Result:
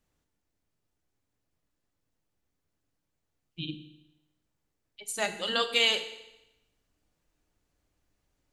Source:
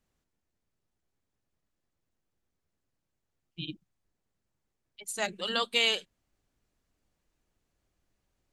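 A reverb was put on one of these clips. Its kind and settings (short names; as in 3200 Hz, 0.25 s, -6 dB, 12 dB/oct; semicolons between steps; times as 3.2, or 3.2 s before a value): FDN reverb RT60 0.93 s, low-frequency decay 1×, high-frequency decay 1×, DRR 7.5 dB; gain +1 dB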